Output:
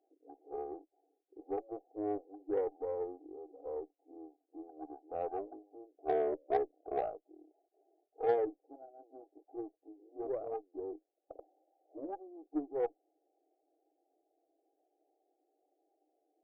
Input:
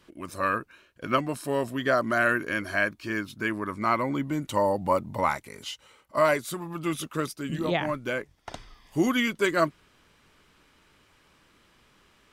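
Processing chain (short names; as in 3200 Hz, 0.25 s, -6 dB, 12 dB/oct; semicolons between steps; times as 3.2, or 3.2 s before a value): brick-wall FIR band-pass 380–1100 Hz; varispeed -25%; added harmonics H 3 -19 dB, 8 -34 dB, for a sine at -12 dBFS; gain -5.5 dB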